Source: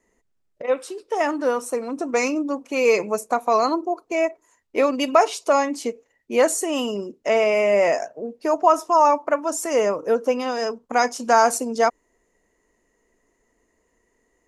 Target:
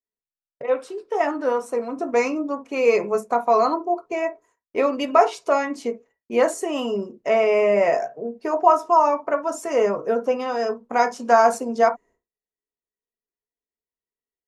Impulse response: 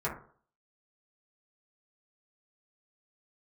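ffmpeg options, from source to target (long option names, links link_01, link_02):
-filter_complex "[0:a]agate=range=-33dB:threshold=-45dB:ratio=3:detection=peak,highshelf=frequency=5100:gain=-11,asplit=2[link_01][link_02];[1:a]atrim=start_sample=2205,atrim=end_sample=3087[link_03];[link_02][link_03]afir=irnorm=-1:irlink=0,volume=-9.5dB[link_04];[link_01][link_04]amix=inputs=2:normalize=0,volume=-3dB"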